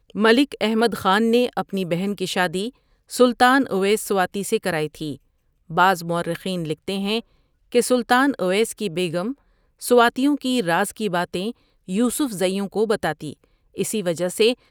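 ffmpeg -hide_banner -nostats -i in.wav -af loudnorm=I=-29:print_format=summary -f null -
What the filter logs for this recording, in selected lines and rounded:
Input Integrated:    -21.3 LUFS
Input True Peak:      -2.5 dBTP
Input LRA:             3.1 LU
Input Threshold:     -31.9 LUFS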